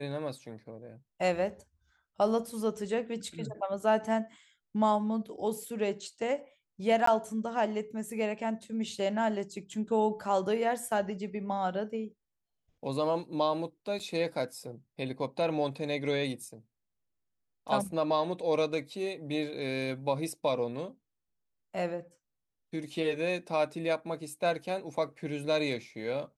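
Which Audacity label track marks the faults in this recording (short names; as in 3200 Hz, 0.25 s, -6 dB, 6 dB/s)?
7.060000	7.070000	gap 14 ms
13.990000	14.000000	gap 6.1 ms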